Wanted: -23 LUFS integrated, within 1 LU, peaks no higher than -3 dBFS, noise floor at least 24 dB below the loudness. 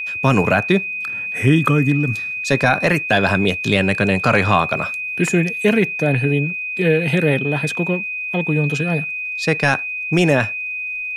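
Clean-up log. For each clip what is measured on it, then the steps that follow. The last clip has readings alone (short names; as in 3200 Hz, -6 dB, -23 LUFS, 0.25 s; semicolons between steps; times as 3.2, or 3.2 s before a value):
ticks 43/s; steady tone 2500 Hz; tone level -23 dBFS; loudness -18.0 LUFS; peak -3.0 dBFS; loudness target -23.0 LUFS
-> de-click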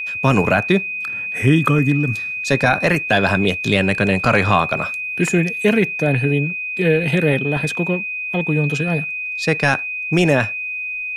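ticks 0.090/s; steady tone 2500 Hz; tone level -23 dBFS
-> notch 2500 Hz, Q 30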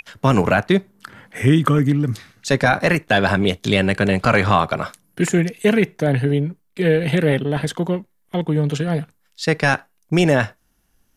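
steady tone none; loudness -19.0 LUFS; peak -2.0 dBFS; loudness target -23.0 LUFS
-> gain -4 dB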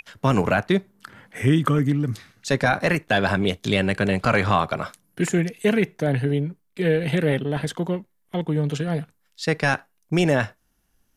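loudness -23.0 LUFS; peak -6.0 dBFS; noise floor -68 dBFS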